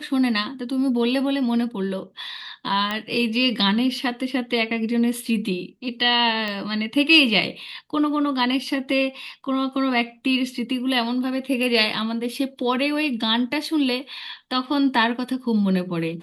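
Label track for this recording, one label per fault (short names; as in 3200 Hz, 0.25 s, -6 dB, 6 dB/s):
2.910000	2.910000	pop -12 dBFS
6.480000	6.480000	pop -16 dBFS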